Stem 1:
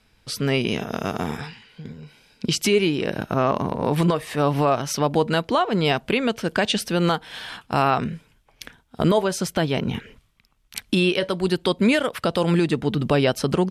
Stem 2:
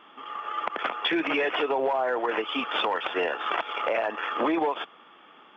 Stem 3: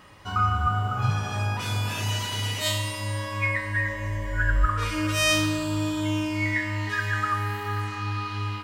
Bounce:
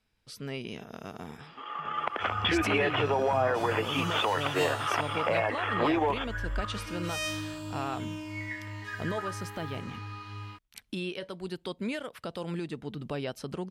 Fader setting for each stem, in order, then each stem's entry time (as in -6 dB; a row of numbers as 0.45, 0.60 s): -15.5, -1.5, -11.5 dB; 0.00, 1.40, 1.95 s